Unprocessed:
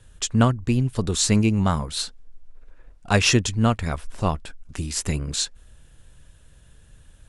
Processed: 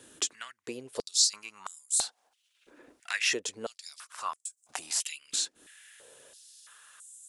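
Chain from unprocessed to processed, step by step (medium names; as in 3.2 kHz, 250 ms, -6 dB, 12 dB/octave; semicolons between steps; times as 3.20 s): compression 4:1, threshold -35 dBFS, peak gain reduction 18.5 dB; treble shelf 4.6 kHz +7.5 dB; step-sequenced high-pass 3 Hz 300–7600 Hz; trim +1.5 dB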